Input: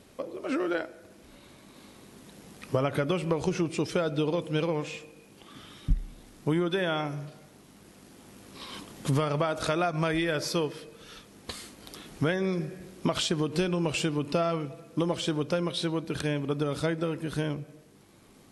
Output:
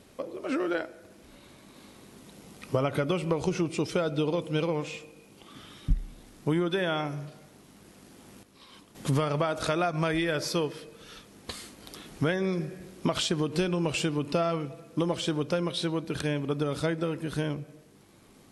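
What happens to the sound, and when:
0:02.18–0:05.56: notch filter 1,700 Hz, Q 11
0:08.43–0:08.95: clip gain −10.5 dB

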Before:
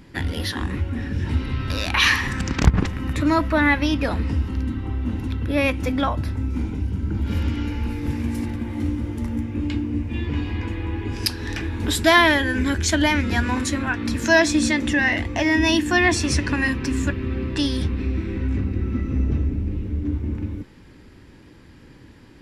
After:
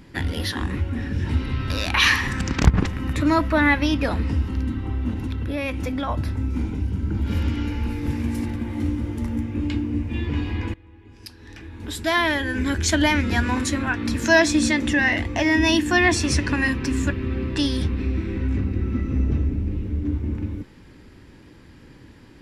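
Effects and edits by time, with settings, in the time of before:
0:05.12–0:06.09: downward compressor, threshold −22 dBFS
0:10.74–0:12.88: fade in quadratic, from −22 dB

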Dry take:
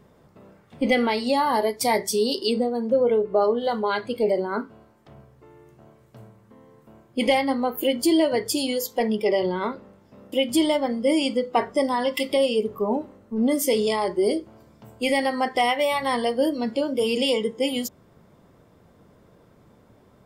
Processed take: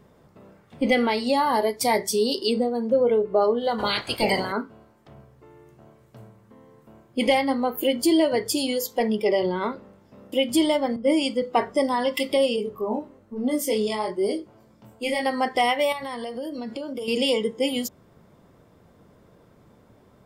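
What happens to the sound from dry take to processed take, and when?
0:03.78–0:04.51: ceiling on every frequency bin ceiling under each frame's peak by 28 dB
0:10.96–0:11.42: multiband upward and downward expander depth 70%
0:12.56–0:15.26: chorus effect 1.1 Hz, delay 19.5 ms, depth 4.4 ms
0:15.92–0:17.08: downward compressor 10 to 1, threshold −28 dBFS

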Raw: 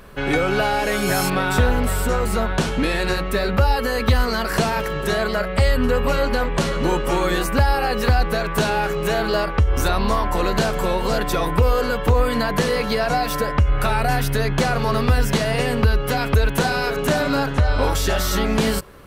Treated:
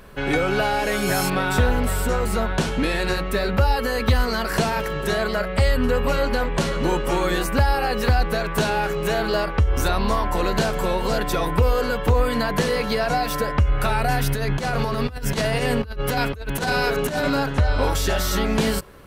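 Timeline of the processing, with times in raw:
0:14.21–0:17.30: compressor whose output falls as the input rises −21 dBFS, ratio −0.5
whole clip: notch filter 1,200 Hz, Q 22; level −1.5 dB

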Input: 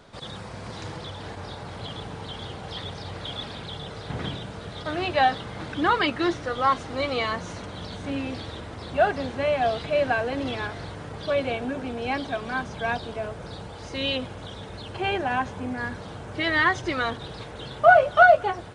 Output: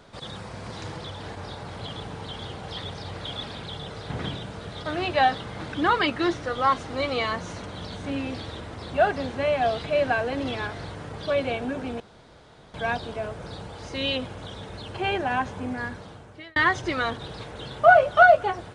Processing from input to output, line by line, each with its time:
0:12.00–0:12.74: fill with room tone
0:15.74–0:16.56: fade out

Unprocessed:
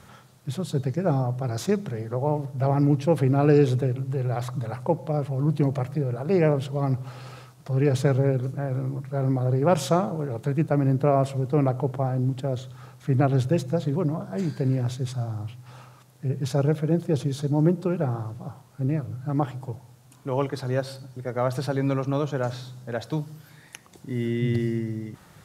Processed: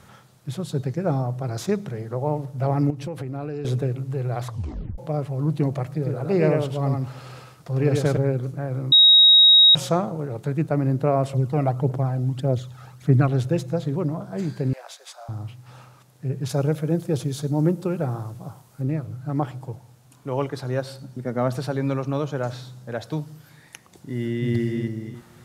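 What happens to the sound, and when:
0:02.90–0:03.65: downward compressor 8 to 1, threshold −27 dBFS
0:04.47: tape stop 0.51 s
0:05.92–0:08.17: single-tap delay 101 ms −3.5 dB
0:08.92–0:09.75: beep over 3,790 Hz −9 dBFS
0:11.33–0:13.29: phase shifter 1.7 Hz, delay 1.6 ms, feedback 52%
0:14.73–0:15.29: Butterworth high-pass 590 Hz
0:16.49–0:18.82: high-shelf EQ 6,700 Hz +8.5 dB
0:21.02–0:21.56: parametric band 220 Hz +11 dB
0:24.09–0:24.54: delay throw 330 ms, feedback 25%, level −5 dB

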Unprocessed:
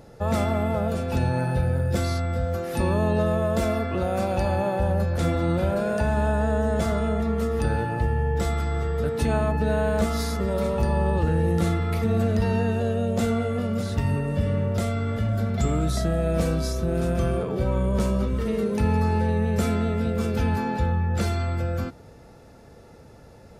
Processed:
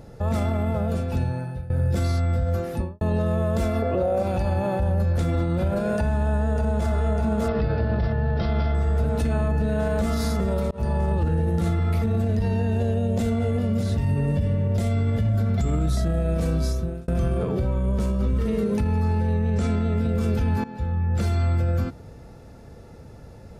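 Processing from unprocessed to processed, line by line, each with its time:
0:00.65–0:01.70: fade out, to −21.5 dB
0:02.57–0:03.01: fade out and dull
0:03.82–0:04.23: parametric band 550 Hz +14.5 dB 1.1 octaves
0:05.96–0:06.92: delay throw 600 ms, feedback 80%, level −3.5 dB
0:07.48–0:08.75: bad sample-rate conversion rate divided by 4×, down none, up filtered
0:10.71–0:11.11: fade in equal-power
0:12.21–0:15.37: parametric band 1,300 Hz −9 dB 0.26 octaves
0:16.56–0:17.08: fade out
0:19.33–0:19.97: low-pass filter 8,500 Hz 24 dB per octave
0:20.64–0:21.59: fade in, from −16 dB
whole clip: low-shelf EQ 210 Hz +8 dB; brickwall limiter −15.5 dBFS

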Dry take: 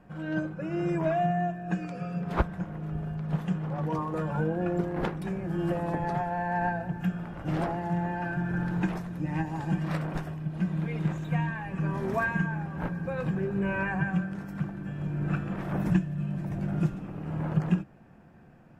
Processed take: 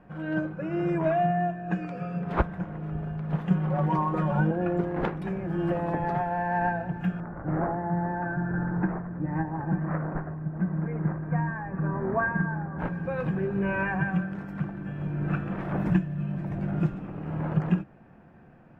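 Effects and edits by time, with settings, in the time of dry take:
0:03.50–0:04.51: comb filter 5.4 ms, depth 98%
0:07.20–0:12.79: Butterworth low-pass 1,800 Hz
whole clip: bass and treble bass −2 dB, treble −14 dB; level +2.5 dB

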